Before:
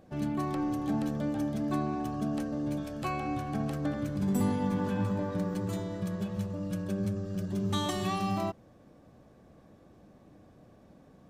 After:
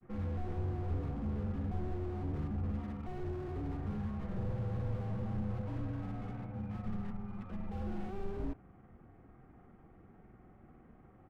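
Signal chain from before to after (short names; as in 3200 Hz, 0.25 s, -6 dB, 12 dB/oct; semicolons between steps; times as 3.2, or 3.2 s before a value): mistuned SSB -380 Hz 350–2600 Hz; grains 0.1 s, grains 20/s, spray 38 ms, pitch spread up and down by 0 st; slew limiter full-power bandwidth 2 Hz; gain +5 dB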